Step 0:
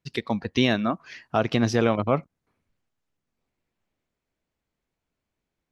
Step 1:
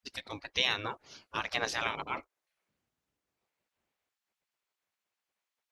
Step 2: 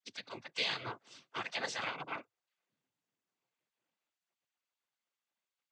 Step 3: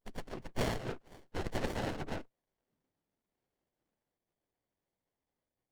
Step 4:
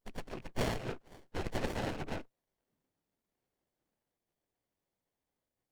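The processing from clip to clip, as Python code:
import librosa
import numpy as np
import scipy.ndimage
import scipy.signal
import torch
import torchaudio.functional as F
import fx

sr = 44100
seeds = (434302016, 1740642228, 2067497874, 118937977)

y1 = fx.spec_gate(x, sr, threshold_db=-15, keep='weak')
y2 = fx.noise_vocoder(y1, sr, seeds[0], bands=16)
y2 = y2 * librosa.db_to_amplitude(-4.5)
y3 = fx.running_max(y2, sr, window=33)
y3 = y3 * librosa.db_to_amplitude(5.5)
y4 = fx.rattle_buzz(y3, sr, strikes_db=-47.0, level_db=-43.0)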